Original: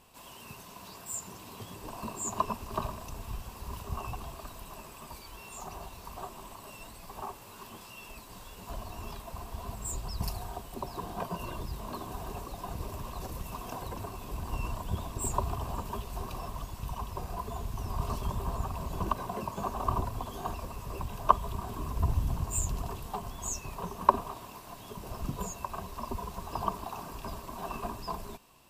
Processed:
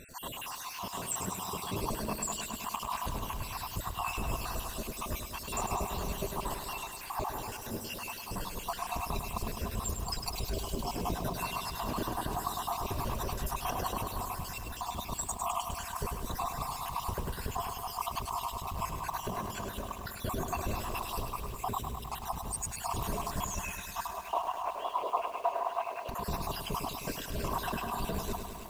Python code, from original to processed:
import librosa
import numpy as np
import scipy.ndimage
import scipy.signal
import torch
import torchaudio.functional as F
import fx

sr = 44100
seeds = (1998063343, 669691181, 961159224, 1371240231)

y = fx.spec_dropout(x, sr, seeds[0], share_pct=63)
y = fx.over_compress(y, sr, threshold_db=-44.0, ratio=-1.0)
y = fx.cabinet(y, sr, low_hz=450.0, low_slope=24, high_hz=2800.0, hz=(700.0, 1000.0, 1700.0, 2700.0), db=(9, 5, -5, 4), at=(24.07, 26.09))
y = fx.echo_feedback(y, sr, ms=545, feedback_pct=52, wet_db=-22.0)
y = fx.echo_crushed(y, sr, ms=103, feedback_pct=80, bits=10, wet_db=-7)
y = F.gain(torch.from_numpy(y), 7.0).numpy()